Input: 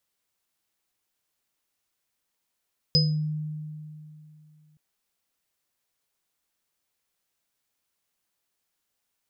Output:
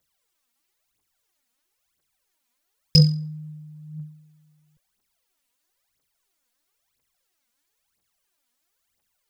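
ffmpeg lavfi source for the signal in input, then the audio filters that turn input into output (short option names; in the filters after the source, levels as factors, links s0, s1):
-f lavfi -i "aevalsrc='0.112*pow(10,-3*t/2.8)*sin(2*PI*153*t)+0.0376*pow(10,-3*t/0.37)*sin(2*PI*493*t)+0.178*pow(10,-3*t/0.33)*sin(2*PI*5030*t)':d=1.82:s=44100"
-af "aphaser=in_gain=1:out_gain=1:delay=4.3:decay=0.75:speed=1:type=triangular"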